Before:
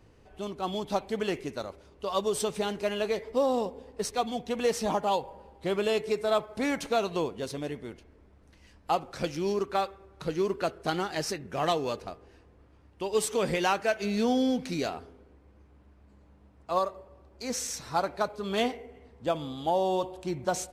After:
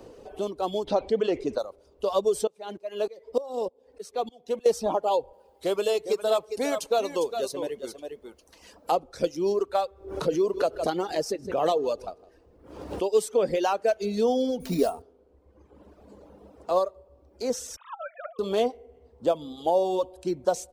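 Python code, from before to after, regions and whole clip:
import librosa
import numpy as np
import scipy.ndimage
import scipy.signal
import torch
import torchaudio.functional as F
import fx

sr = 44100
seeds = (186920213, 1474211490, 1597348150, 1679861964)

y = fx.chain(x, sr, fx.lowpass(hz=4600.0, slope=12),
    fx.env_flatten(amount_pct=50), at=(0.87, 1.58))
y = fx.chain(y, sr, fx.highpass(hz=220.0, slope=6),
    fx.tremolo_decay(direction='swelling', hz=3.3, depth_db=19), at=(2.47, 4.66))
y = fx.chain(y, sr, fx.tilt_eq(slope=2.5),
    fx.echo_single(ms=404, db=-8.5), at=(5.33, 8.92))
y = fx.chain(y, sr, fx.echo_single(ms=158, db=-15.0),
    fx.pre_swell(db_per_s=70.0), at=(9.88, 13.05))
y = fx.chain(y, sr, fx.low_shelf(hz=260.0, db=10.0),
    fx.comb(ms=4.4, depth=0.62),
    fx.sample_hold(seeds[0], rate_hz=9500.0, jitter_pct=0), at=(14.6, 15.02))
y = fx.chain(y, sr, fx.sine_speech(),
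    fx.highpass(hz=1000.0, slope=24),
    fx.over_compress(threshold_db=-41.0, ratio=-0.5), at=(17.76, 18.39))
y = fx.dereverb_blind(y, sr, rt60_s=1.1)
y = fx.graphic_eq_10(y, sr, hz=(125, 500, 2000), db=(-7, 9, -8))
y = fx.band_squash(y, sr, depth_pct=40)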